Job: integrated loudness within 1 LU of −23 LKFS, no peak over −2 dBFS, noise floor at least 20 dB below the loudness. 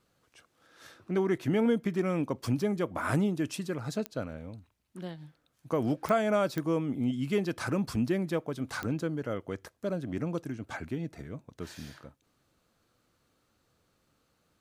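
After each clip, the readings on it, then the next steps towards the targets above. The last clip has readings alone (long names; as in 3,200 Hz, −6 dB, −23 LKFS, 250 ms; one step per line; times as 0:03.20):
number of clicks 4; integrated loudness −31.5 LKFS; sample peak −13.5 dBFS; target loudness −23.0 LKFS
→ click removal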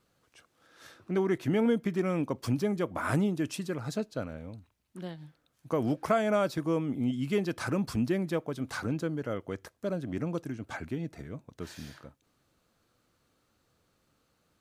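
number of clicks 0; integrated loudness −31.5 LKFS; sample peak −13.5 dBFS; target loudness −23.0 LKFS
→ level +8.5 dB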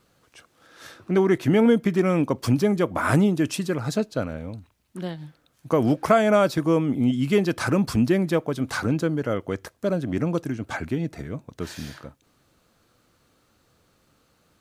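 integrated loudness −23.0 LKFS; sample peak −5.0 dBFS; background noise floor −66 dBFS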